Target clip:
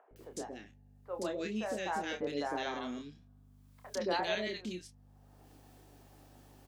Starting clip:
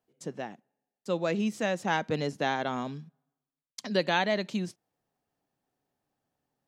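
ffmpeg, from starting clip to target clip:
ffmpeg -i in.wav -filter_complex "[0:a]lowshelf=frequency=200:width_type=q:width=1.5:gain=-13,acompressor=mode=upward:threshold=-33dB:ratio=2.5,aeval=exprs='val(0)+0.00251*(sin(2*PI*50*n/s)+sin(2*PI*2*50*n/s)/2+sin(2*PI*3*50*n/s)/3+sin(2*PI*4*50*n/s)/4+sin(2*PI*5*50*n/s)/5)':channel_layout=same,asplit=2[link_01][link_02];[link_02]adelay=28,volume=-7dB[link_03];[link_01][link_03]amix=inputs=2:normalize=0,acrossover=split=530|1600[link_04][link_05][link_06];[link_04]adelay=110[link_07];[link_06]adelay=160[link_08];[link_07][link_05][link_08]amix=inputs=3:normalize=0,volume=-6dB" out.wav

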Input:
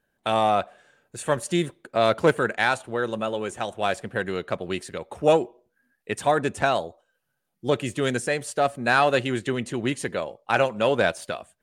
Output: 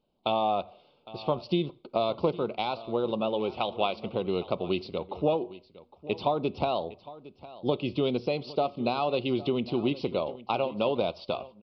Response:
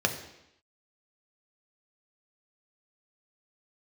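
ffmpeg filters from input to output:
-filter_complex "[0:a]asettb=1/sr,asplit=3[link_01][link_02][link_03];[link_01]atrim=end=3.514[link_04];[link_02]atrim=start=3.51:end=4.15,asetpts=PTS-STARTPTS,afade=type=in:duration=0.004:curve=qsin,afade=type=out:start_time=0.636:duration=0.004:curve=qsin,equalizer=frequency=2100:width_type=o:width=2:gain=8.5[link_05];[link_03]atrim=start=4.146[link_06];[link_04][link_05]acrossfade=duration=0.004:curve1=hsin:curve2=qsin[link_07];[link_07][link_06]acrossfade=duration=0.004:curve1=qsin:curve2=hsin,acompressor=threshold=-23dB:ratio=10,asuperstop=centerf=1700:order=4:qfactor=1.3,aecho=1:1:809:0.126,asplit=2[link_08][link_09];[1:a]atrim=start_sample=2205,atrim=end_sample=3087,asetrate=32634,aresample=44100[link_10];[link_09][link_10]afir=irnorm=-1:irlink=0,volume=-24.5dB[link_11];[link_08][link_11]amix=inputs=2:normalize=0,aresample=11025,aresample=44100"

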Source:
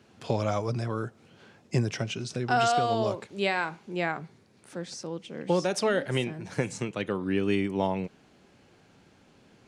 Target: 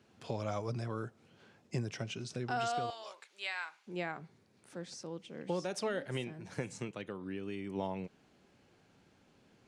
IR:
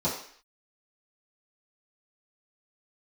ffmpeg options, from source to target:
-filter_complex "[0:a]asettb=1/sr,asplit=3[link_01][link_02][link_03];[link_01]atrim=end=2.904[link_04];[link_02]atrim=start=2.9:end=3.87,asetpts=PTS-STARTPTS,afade=type=in:duration=0.004:curve=qsin,afade=type=out:start_time=0.966:duration=0.004:curve=qsin,highpass=1300[link_05];[link_03]atrim=start=3.866[link_06];[link_04][link_05]acrossfade=duration=0.004:curve1=hsin:curve2=qsin[link_07];[link_07][link_06]acrossfade=duration=0.004:curve1=qsin:curve2=hsin,alimiter=limit=-17.5dB:level=0:latency=1:release=375,asplit=3[link_08][link_09][link_10];[link_08]afade=type=out:start_time=6.9:duration=0.02[link_11];[link_09]acompressor=threshold=-34dB:ratio=2,afade=type=in:start_time=6.9:duration=0.02,afade=type=out:start_time=7.66:duration=0.02[link_12];[link_10]afade=type=in:start_time=7.66:duration=0.02[link_13];[link_11][link_12][link_13]amix=inputs=3:normalize=0,volume=-7.5dB"

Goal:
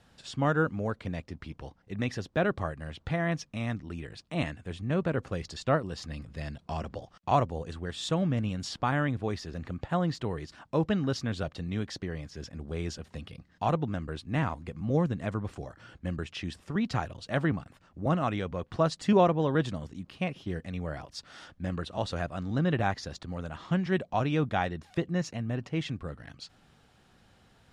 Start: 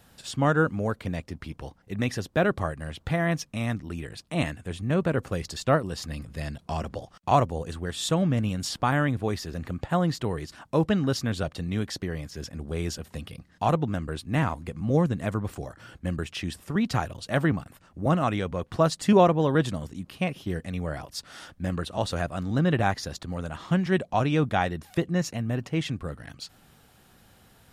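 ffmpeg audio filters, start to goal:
ffmpeg -i in.wav -af "lowpass=6200,volume=-4dB" out.wav

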